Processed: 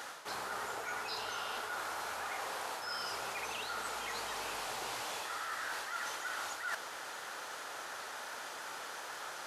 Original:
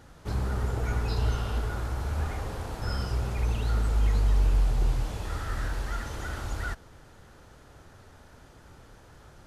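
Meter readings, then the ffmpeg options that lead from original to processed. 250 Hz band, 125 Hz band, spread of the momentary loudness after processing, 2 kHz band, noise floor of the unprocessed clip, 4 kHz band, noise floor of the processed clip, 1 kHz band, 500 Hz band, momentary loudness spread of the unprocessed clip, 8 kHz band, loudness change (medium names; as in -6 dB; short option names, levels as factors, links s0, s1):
-16.5 dB, -34.5 dB, 5 LU, +2.0 dB, -53 dBFS, +3.0 dB, -45 dBFS, +1.0 dB, -6.0 dB, 10 LU, +3.5 dB, -9.5 dB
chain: -af "highpass=820,areverse,acompressor=threshold=0.00251:ratio=10,areverse,volume=5.62"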